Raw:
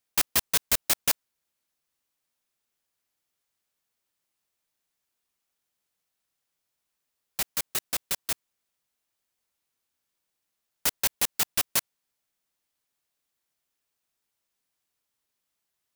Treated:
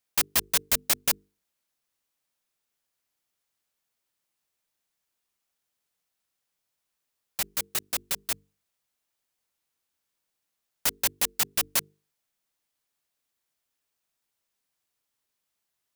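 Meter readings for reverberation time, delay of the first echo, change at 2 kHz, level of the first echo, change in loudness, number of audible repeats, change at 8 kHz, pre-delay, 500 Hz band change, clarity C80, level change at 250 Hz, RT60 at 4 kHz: none, none, 0.0 dB, none, 0.0 dB, none, 0.0 dB, none, -0.5 dB, none, -1.0 dB, none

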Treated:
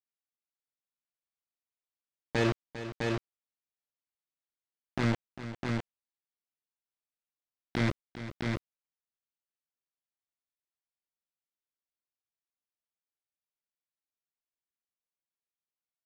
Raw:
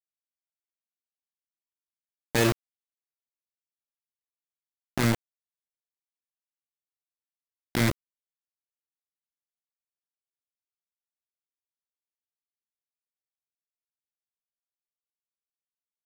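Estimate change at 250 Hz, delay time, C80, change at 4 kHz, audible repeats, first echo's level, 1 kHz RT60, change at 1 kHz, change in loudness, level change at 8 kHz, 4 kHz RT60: -2.5 dB, 0.4 s, none, -6.0 dB, 2, -12.5 dB, none, -3.0 dB, -6.5 dB, -13.5 dB, none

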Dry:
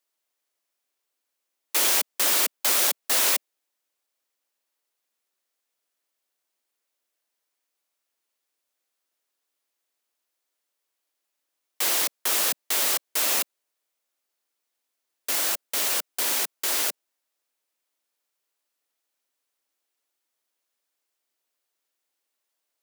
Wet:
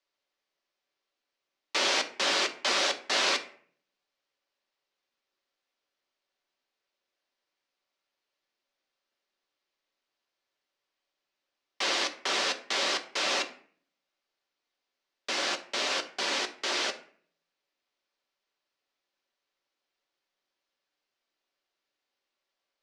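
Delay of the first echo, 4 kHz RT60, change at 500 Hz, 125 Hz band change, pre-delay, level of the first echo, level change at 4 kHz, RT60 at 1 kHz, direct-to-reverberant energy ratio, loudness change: none, 0.35 s, +2.0 dB, n/a, 3 ms, none, 0.0 dB, 0.50 s, 5.0 dB, -6.0 dB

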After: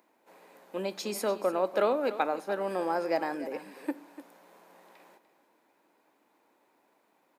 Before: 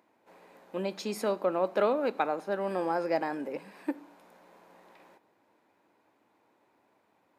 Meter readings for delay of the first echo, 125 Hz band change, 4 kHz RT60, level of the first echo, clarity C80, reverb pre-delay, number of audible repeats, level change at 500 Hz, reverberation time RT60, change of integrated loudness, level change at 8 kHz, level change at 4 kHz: 0.295 s, -3.5 dB, none, -14.5 dB, none, none, 1, 0.0 dB, none, 0.0 dB, n/a, +2.0 dB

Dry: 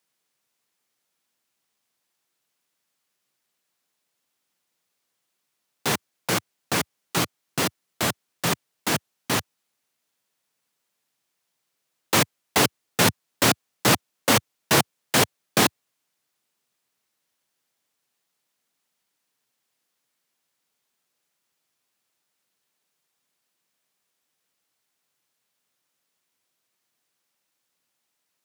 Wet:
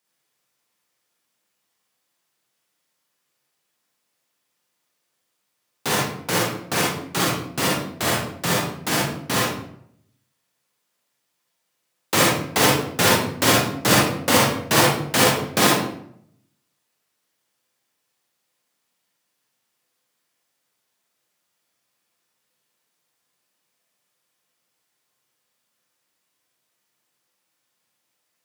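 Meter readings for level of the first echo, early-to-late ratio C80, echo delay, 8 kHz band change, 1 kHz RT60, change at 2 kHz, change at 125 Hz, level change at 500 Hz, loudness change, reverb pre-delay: none, 4.0 dB, none, +3.0 dB, 0.65 s, +4.0 dB, +4.5 dB, +5.0 dB, +3.5 dB, 38 ms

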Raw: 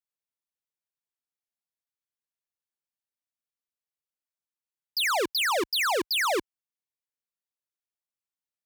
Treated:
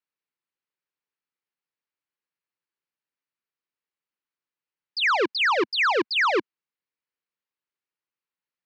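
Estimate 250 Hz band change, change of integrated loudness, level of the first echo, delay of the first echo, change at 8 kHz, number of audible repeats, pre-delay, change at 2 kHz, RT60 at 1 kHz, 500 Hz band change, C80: +5.0 dB, +3.5 dB, none, none, -13.5 dB, none, none, +5.5 dB, none, +3.5 dB, none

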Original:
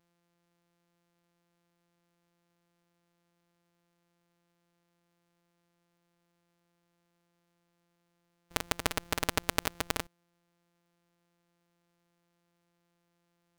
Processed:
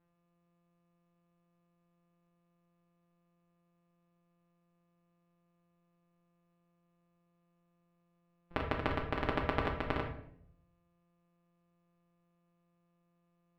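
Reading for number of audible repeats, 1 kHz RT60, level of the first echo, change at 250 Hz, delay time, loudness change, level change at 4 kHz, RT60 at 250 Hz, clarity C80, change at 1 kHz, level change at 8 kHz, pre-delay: none, 0.55 s, none, +2.0 dB, none, -3.0 dB, -11.0 dB, 0.90 s, 10.5 dB, -0.5 dB, under -30 dB, 3 ms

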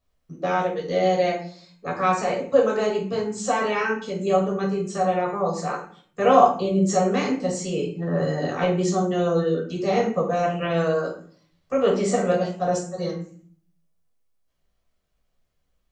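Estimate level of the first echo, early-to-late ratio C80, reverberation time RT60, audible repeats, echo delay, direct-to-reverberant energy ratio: none, 11.0 dB, 0.50 s, none, none, -2.0 dB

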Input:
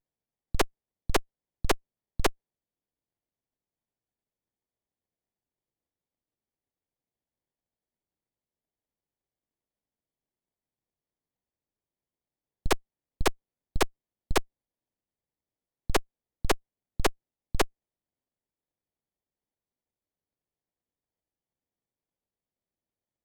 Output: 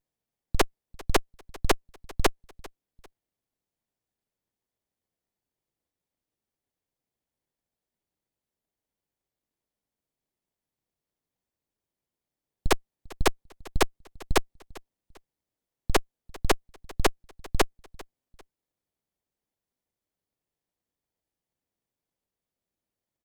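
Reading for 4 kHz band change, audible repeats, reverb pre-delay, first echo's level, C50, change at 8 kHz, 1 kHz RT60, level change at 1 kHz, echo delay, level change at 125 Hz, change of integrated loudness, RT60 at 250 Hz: +2.5 dB, 2, none, -22.0 dB, none, +2.5 dB, none, +2.5 dB, 0.397 s, +2.5 dB, +2.0 dB, none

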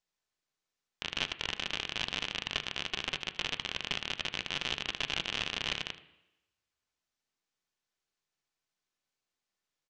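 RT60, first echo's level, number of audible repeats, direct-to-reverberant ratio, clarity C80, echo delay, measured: 0.90 s, -17.0 dB, 1, 9.0 dB, 17.5 dB, 77 ms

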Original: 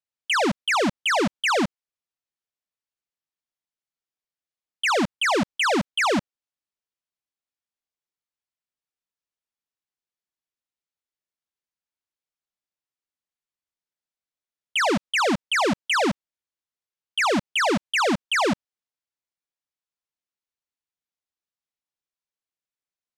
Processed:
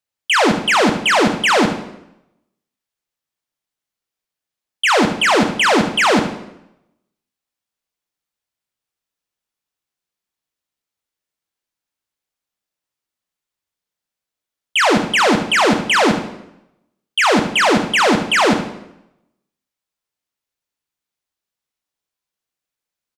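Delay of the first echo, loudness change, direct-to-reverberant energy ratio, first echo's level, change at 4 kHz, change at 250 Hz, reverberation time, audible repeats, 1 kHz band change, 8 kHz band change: 74 ms, +8.0 dB, 5.5 dB, -11.0 dB, +8.0 dB, +8.5 dB, 0.85 s, 1, +8.0 dB, +8.0 dB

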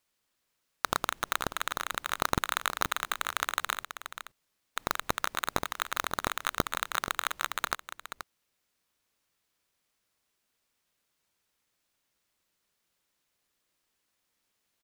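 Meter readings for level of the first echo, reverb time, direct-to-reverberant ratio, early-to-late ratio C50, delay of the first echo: -10.5 dB, none, none, none, 0.479 s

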